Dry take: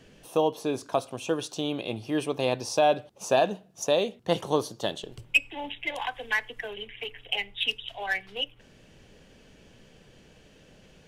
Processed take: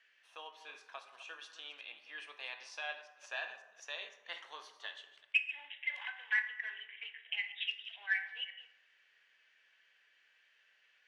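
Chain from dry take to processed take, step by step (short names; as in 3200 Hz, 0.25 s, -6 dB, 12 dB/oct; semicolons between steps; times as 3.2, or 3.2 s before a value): reverse delay 0.181 s, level -13 dB; ladder band-pass 2100 Hz, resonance 50%; plate-style reverb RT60 0.99 s, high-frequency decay 0.5×, DRR 6.5 dB; gain +1 dB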